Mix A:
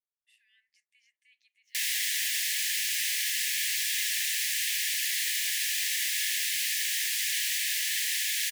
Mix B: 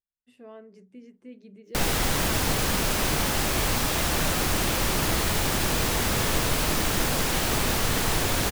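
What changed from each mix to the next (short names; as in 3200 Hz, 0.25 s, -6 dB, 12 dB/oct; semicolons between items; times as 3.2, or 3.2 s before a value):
master: remove Chebyshev high-pass 1700 Hz, order 8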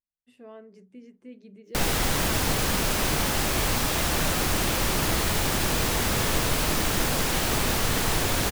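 none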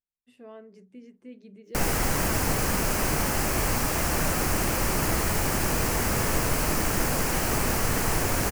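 background: add bell 3600 Hz -12.5 dB 0.53 oct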